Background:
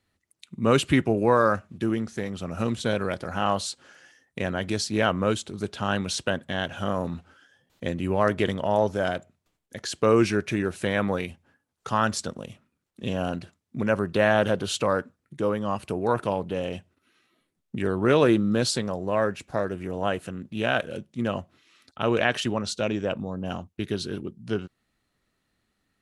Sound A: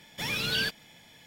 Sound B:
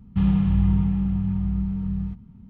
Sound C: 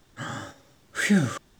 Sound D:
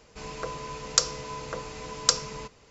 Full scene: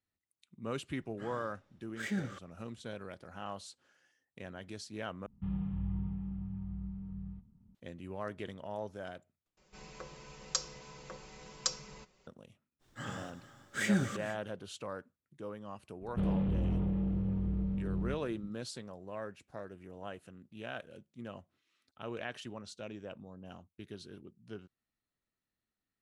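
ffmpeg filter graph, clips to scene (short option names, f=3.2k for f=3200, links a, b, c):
-filter_complex "[3:a]asplit=2[a][b];[2:a]asplit=2[c][d];[0:a]volume=-18dB[e];[a]adynamicsmooth=sensitivity=5.5:basefreq=4.3k[f];[c]highshelf=f=2.1k:g=-9[g];[4:a]aecho=1:1:5.4:0.78[h];[b]aecho=1:1:229|452:0.158|0.141[i];[d]asoftclip=type=tanh:threshold=-22dB[j];[e]asplit=3[k][l][m];[k]atrim=end=5.264[n];[g]atrim=end=2.49,asetpts=PTS-STARTPTS,volume=-16.5dB[o];[l]atrim=start=7.746:end=9.574[p];[h]atrim=end=2.7,asetpts=PTS-STARTPTS,volume=-13.5dB[q];[m]atrim=start=12.266[r];[f]atrim=end=1.59,asetpts=PTS-STARTPTS,volume=-14.5dB,afade=t=in:d=0.004:c=hsin,afade=t=out:st=1.586:d=0.004:c=hsin,adelay=1010[s];[i]atrim=end=1.59,asetpts=PTS-STARTPTS,volume=-8.5dB,afade=t=in:d=0.05,afade=t=out:st=1.54:d=0.05,adelay=12790[t];[j]atrim=end=2.49,asetpts=PTS-STARTPTS,volume=-6dB,afade=t=in:d=0.004:c=hsin,afade=t=out:st=2.486:d=0.004:c=hsin,adelay=16010[u];[n][o]acrossfade=d=0.004:c1=hsin:c2=hsin[v];[v][p]acrossfade=d=0.004:c1=hsin:c2=hsin[w];[w][q]acrossfade=d=0.004:c1=hsin:c2=hsin[x];[x][r]acrossfade=d=0.004:c1=hsin:c2=hsin[y];[y][s][t][u]amix=inputs=4:normalize=0"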